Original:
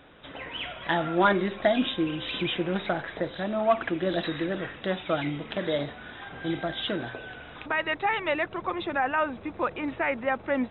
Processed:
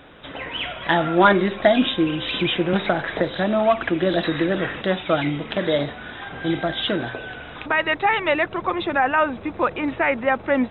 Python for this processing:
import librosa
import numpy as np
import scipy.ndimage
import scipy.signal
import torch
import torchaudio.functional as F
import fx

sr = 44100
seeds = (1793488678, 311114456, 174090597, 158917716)

y = fx.band_squash(x, sr, depth_pct=70, at=(2.73, 4.82))
y = F.gain(torch.from_numpy(y), 7.0).numpy()